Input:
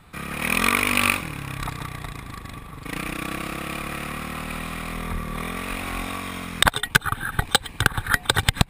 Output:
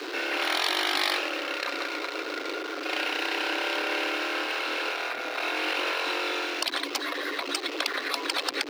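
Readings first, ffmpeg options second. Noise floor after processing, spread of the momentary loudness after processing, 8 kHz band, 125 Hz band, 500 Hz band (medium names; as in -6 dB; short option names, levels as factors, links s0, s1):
-35 dBFS, 6 LU, -8.5 dB, under -40 dB, +2.0 dB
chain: -af "aeval=exprs='val(0)+0.5*0.0282*sgn(val(0))':c=same,highshelf=f=6600:t=q:w=1.5:g=-12.5,afreqshift=270,afftfilt=real='re*lt(hypot(re,im),0.2)':imag='im*lt(hypot(re,im),0.2)':win_size=1024:overlap=0.75"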